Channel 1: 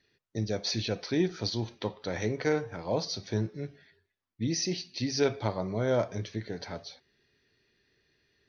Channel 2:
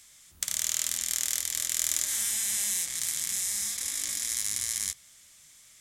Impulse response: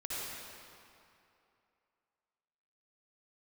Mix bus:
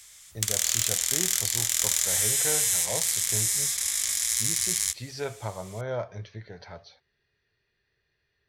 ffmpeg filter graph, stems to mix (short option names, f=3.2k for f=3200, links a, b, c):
-filter_complex "[0:a]highshelf=f=2.8k:g=-11,volume=0.5dB[a];[1:a]acontrast=75,volume=-2dB[b];[a][b]amix=inputs=2:normalize=0,equalizer=f=270:w=1.1:g=-14.5,asoftclip=type=hard:threshold=-11.5dB"